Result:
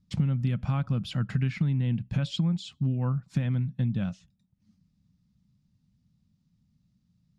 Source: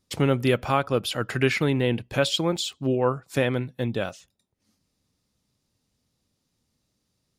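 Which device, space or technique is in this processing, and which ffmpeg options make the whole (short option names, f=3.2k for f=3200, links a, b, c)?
jukebox: -af "lowpass=6.1k,lowshelf=f=270:t=q:w=3:g=13.5,acompressor=threshold=-16dB:ratio=5,volume=-8dB"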